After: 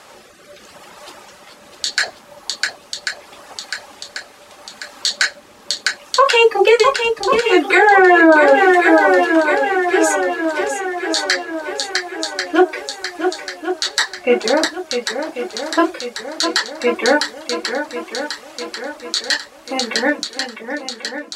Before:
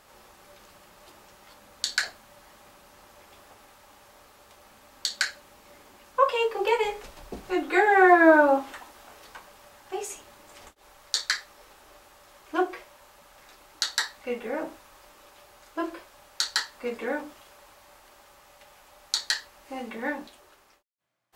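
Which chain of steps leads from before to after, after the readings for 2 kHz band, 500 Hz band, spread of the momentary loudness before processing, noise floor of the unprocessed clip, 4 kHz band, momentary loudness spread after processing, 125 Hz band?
+12.5 dB, +12.0 dB, 21 LU, -57 dBFS, +12.5 dB, 16 LU, no reading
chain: high-pass 260 Hz 6 dB/octave; reverb removal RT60 1.4 s; low-pass 10 kHz 12 dB/octave; rotary cabinet horn 0.75 Hz; shuffle delay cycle 1091 ms, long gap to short 1.5:1, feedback 51%, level -8 dB; loudness maximiser +19.5 dB; trim -1 dB

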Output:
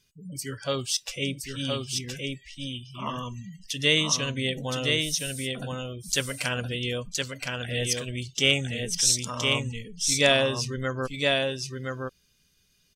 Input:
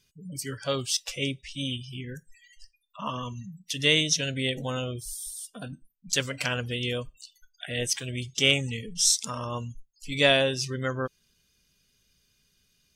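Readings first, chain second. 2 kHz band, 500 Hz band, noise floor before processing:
+1.5 dB, +1.5 dB, -70 dBFS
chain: delay 1018 ms -3.5 dB

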